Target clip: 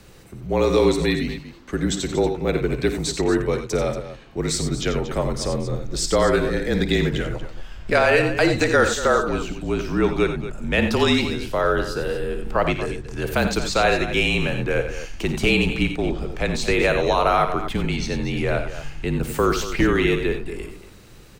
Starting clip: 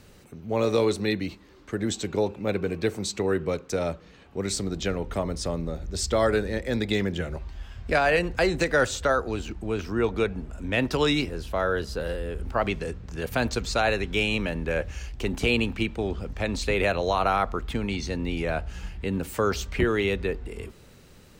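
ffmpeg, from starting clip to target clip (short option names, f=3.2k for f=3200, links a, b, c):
-af "aecho=1:1:55|86|98|234:0.237|0.299|0.224|0.224,afreqshift=-39,volume=4.5dB"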